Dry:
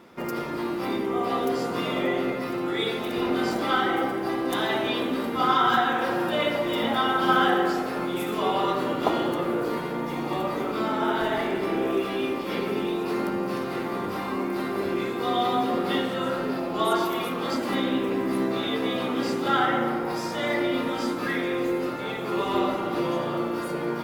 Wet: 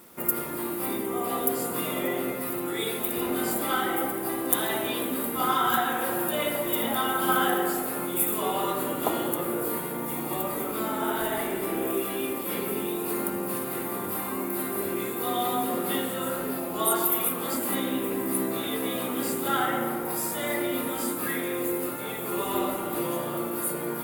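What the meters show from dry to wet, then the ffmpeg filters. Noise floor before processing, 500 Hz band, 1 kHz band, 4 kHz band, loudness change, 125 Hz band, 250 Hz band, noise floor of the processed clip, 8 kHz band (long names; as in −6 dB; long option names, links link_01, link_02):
−31 dBFS, −3.5 dB, −3.5 dB, −3.5 dB, −1.5 dB, −3.5 dB, −3.5 dB, −33 dBFS, +14.0 dB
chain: -af "aexciter=amount=11.5:drive=6.5:freq=8000,acrusher=bits=7:mix=0:aa=0.5,volume=-3.5dB"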